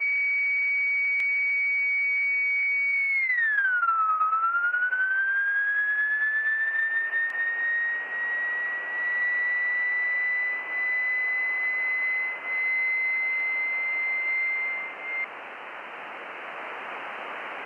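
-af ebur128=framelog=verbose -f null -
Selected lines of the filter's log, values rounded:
Integrated loudness:
  I:         -23.9 LUFS
  Threshold: -34.4 LUFS
Loudness range:
  LRA:         4.8 LU
  Threshold: -44.3 LUFS
  LRA low:   -27.1 LUFS
  LRA high:  -22.3 LUFS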